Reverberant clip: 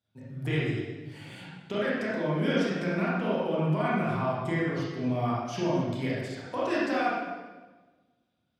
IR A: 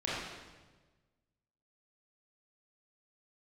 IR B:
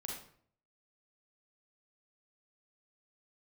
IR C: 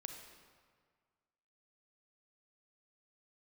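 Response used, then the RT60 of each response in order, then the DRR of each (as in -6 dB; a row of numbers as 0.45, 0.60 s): A; 1.3, 0.55, 1.8 s; -8.5, -2.0, 4.0 dB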